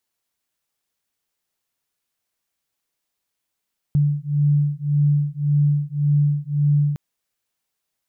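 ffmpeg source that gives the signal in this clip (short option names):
-f lavfi -i "aevalsrc='0.112*(sin(2*PI*145*t)+sin(2*PI*146.8*t))':d=3.01:s=44100"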